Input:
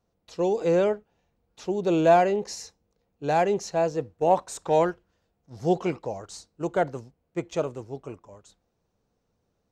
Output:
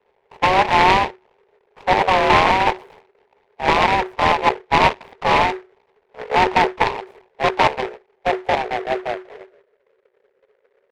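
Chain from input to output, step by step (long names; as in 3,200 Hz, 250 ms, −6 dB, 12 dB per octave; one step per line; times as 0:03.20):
sub-harmonics by changed cycles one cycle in 2, muted
low-shelf EQ 100 Hz +11.5 dB
harmonic and percussive parts rebalanced harmonic −7 dB
high-shelf EQ 3,500 Hz +3 dB
in parallel at −1 dB: compressor whose output falls as the input rises −28 dBFS, ratio −0.5
on the sum: low-pass filter sweep 560 Hz → 180 Hz, 0:07.02–0:08.97
frequency shifter +370 Hz
tempo change 0.89×
short delay modulated by noise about 1,200 Hz, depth 0.11 ms
level +5 dB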